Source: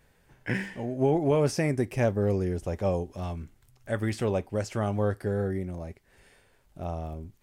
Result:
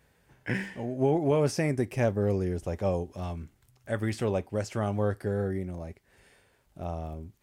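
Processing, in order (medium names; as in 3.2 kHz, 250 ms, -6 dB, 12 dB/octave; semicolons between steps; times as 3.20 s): high-pass 43 Hz; trim -1 dB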